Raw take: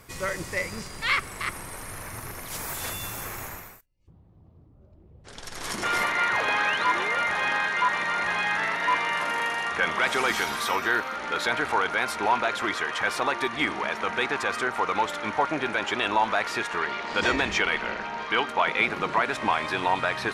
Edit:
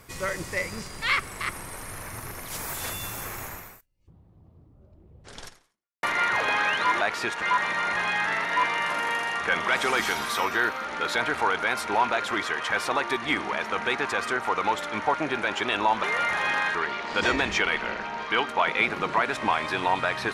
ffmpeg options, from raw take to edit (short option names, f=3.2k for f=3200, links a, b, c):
-filter_complex "[0:a]asplit=6[a][b][c][d][e][f];[a]atrim=end=6.03,asetpts=PTS-STARTPTS,afade=t=out:st=5.45:d=0.58:c=exp[g];[b]atrim=start=6.03:end=7.012,asetpts=PTS-STARTPTS,afade=t=in:d=0.004:c=hsin[h];[c]atrim=start=16.338:end=16.752[i];[d]atrim=start=7.728:end=16.342[j];[e]atrim=start=7.008:end=7.732[k];[f]atrim=start=16.748[l];[g][h]concat=n=2:v=0:a=1[m];[m][i]acrossfade=d=0.004:c1=hsin:c2=hsin[n];[n][j]acrossfade=d=0.004:c1=hsin:c2=hsin[o];[o][k]acrossfade=d=0.004:c1=hsin:c2=hsin[p];[p][l]acrossfade=d=0.004:c1=hsin:c2=hsin"